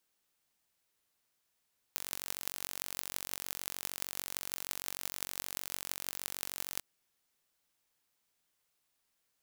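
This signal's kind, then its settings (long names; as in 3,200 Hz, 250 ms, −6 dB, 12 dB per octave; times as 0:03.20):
impulse train 46.5 per second, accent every 8, −7 dBFS 4.85 s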